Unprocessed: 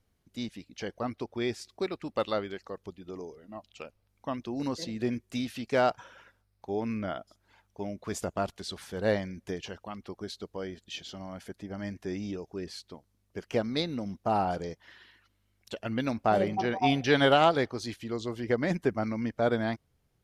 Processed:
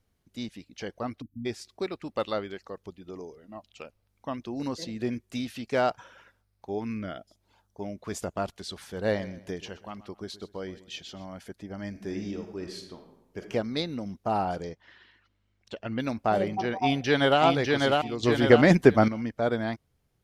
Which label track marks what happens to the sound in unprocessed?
1.210000	1.460000	spectral delete 320–11000 Hz
6.780000	7.810000	bell 520 Hz -> 2900 Hz -13.5 dB 0.57 oct
8.920000	11.260000	feedback echo 0.126 s, feedback 35%, level -17 dB
11.890000	13.390000	reverb throw, RT60 0.93 s, DRR 4 dB
14.690000	15.990000	air absorption 95 m
16.800000	17.410000	echo throw 0.6 s, feedback 20%, level -2 dB
18.230000	19.080000	gain +10.5 dB

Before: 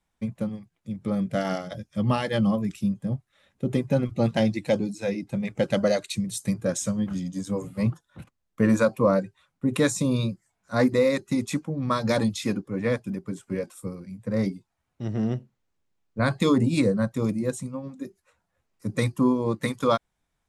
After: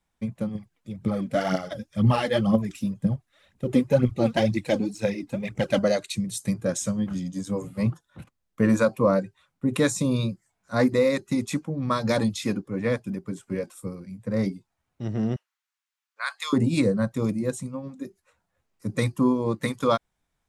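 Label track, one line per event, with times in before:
0.550000	5.790000	phaser 2 Hz, delay 4.4 ms, feedback 60%
15.360000	16.530000	HPF 1100 Hz 24 dB/oct

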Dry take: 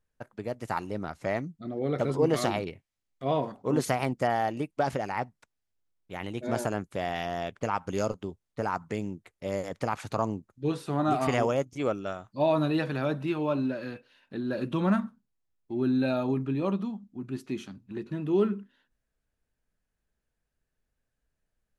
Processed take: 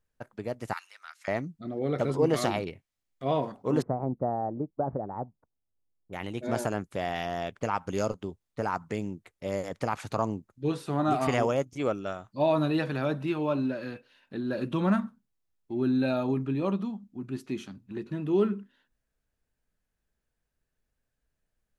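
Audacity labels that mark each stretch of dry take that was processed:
0.730000	1.280000	HPF 1400 Hz 24 dB/oct
3.820000	6.130000	Bessel low-pass 680 Hz, order 6

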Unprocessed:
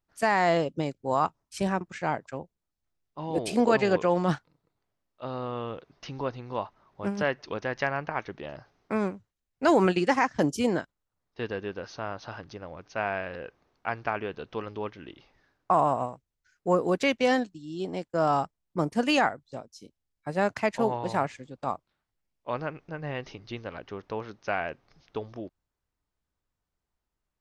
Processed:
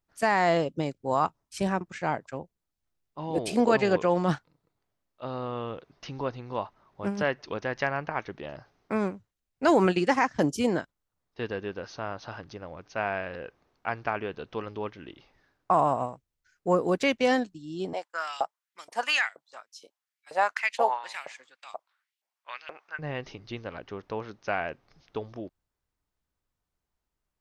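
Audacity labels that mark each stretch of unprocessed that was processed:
17.930000	22.990000	LFO high-pass saw up 2.1 Hz 590–3400 Hz

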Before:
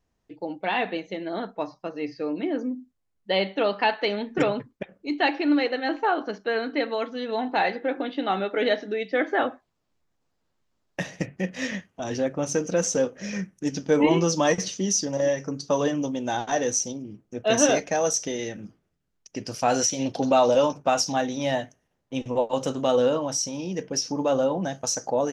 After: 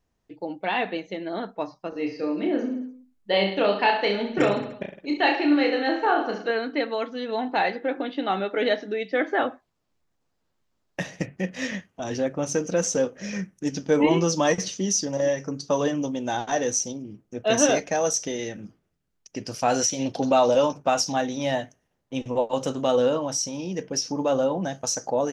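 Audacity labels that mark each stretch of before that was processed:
1.890000	6.510000	reverse bouncing-ball echo first gap 30 ms, each gap 1.2×, echoes 6

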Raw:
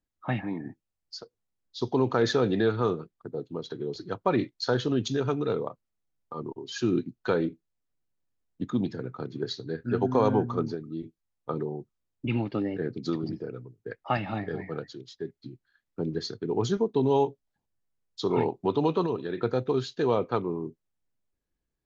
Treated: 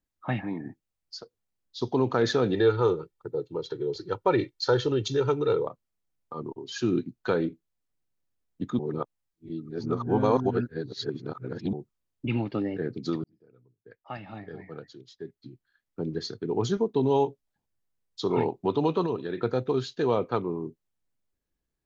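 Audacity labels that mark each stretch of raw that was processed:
2.540000	5.670000	comb 2.2 ms, depth 70%
8.790000	11.730000	reverse
13.240000	16.420000	fade in

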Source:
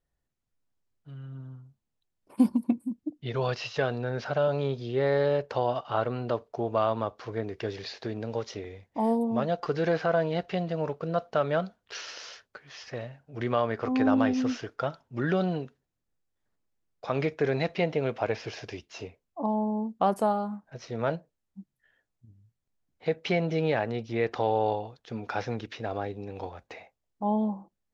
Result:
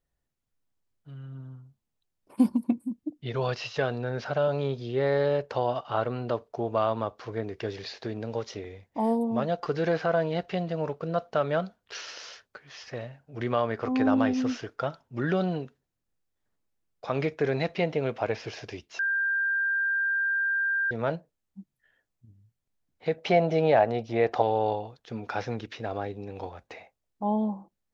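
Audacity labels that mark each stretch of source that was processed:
18.990000	20.910000	bleep 1590 Hz -23.5 dBFS
23.180000	24.420000	bell 690 Hz +11 dB 0.81 oct

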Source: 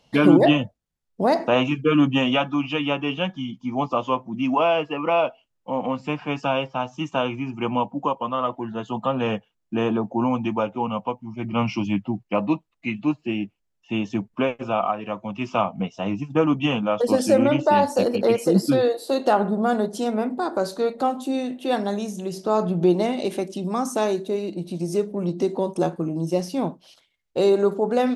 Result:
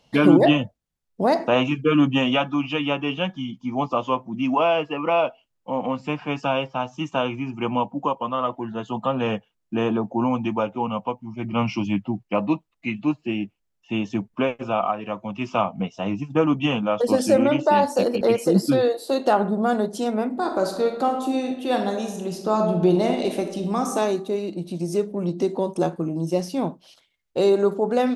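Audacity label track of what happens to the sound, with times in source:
17.360000	18.210000	HPF 150 Hz
20.280000	23.930000	reverb throw, RT60 0.91 s, DRR 4.5 dB

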